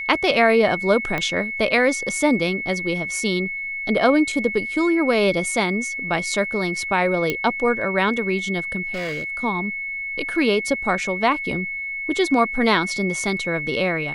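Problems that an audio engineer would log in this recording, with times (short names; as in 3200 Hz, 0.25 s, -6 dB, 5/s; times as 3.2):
tone 2200 Hz -26 dBFS
1.18 pop -11 dBFS
7.3 pop -8 dBFS
8.93–9.24 clipped -23.5 dBFS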